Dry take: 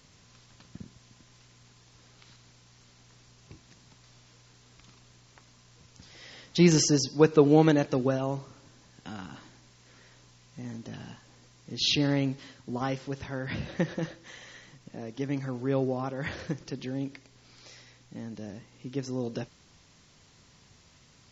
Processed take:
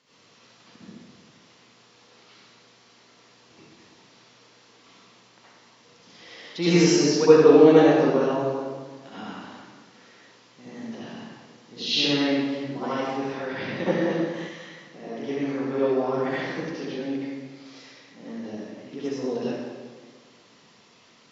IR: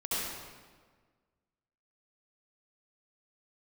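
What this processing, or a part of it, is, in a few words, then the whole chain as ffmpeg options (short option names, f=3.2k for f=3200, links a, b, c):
supermarket ceiling speaker: -filter_complex "[0:a]highpass=260,lowpass=5.1k[a];[1:a]atrim=start_sample=2205[b];[a][b]afir=irnorm=-1:irlink=0,asettb=1/sr,asplit=3[c][d][e];[c]atrim=end=13.824[f];[d]atrim=start=13.82:end=14.48,asetpts=PTS-STARTPTS,afade=t=in:d=0.004:c=qsin,afade=t=out:st=0.656:d=0.004:c=qsin,equalizer=f=520:w=0.4:g=4.5[g];[e]atrim=start=14.476[h];[f][g]acrossfade=d=0.004:c1=hsin:c2=qsin[i];[i][h]acrossfade=d=0.004:c1=qsin:c2=hsin"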